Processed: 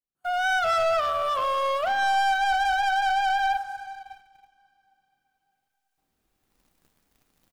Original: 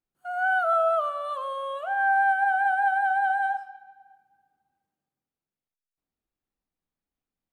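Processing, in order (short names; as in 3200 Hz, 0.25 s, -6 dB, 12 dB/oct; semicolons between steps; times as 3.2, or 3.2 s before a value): recorder AGC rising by 9.5 dB/s; on a send: feedback echo 0.234 s, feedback 43%, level -18 dB; on the sum: sample leveller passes 3; two-slope reverb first 0.3 s, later 4.1 s, from -21 dB, DRR 15 dB; gain -5.5 dB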